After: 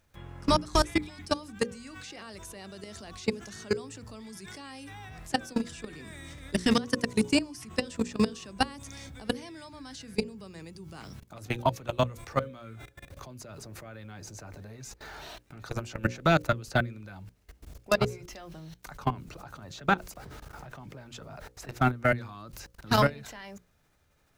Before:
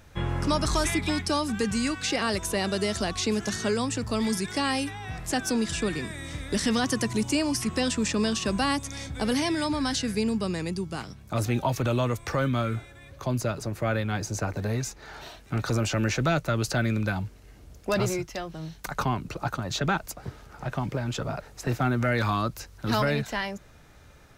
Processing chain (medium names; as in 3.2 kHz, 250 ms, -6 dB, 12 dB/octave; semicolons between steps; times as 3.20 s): bit crusher 10-bit; level held to a coarse grid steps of 24 dB; hum notches 60/120/180/240/300/360/420/480/540 Hz; trim +4 dB